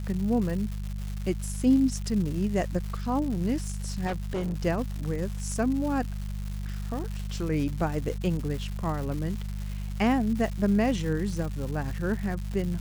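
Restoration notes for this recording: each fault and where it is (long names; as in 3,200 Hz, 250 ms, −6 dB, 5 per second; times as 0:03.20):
surface crackle 320 per second −34 dBFS
mains hum 50 Hz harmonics 4 −33 dBFS
0:04.06–0:04.60: clipping −26 dBFS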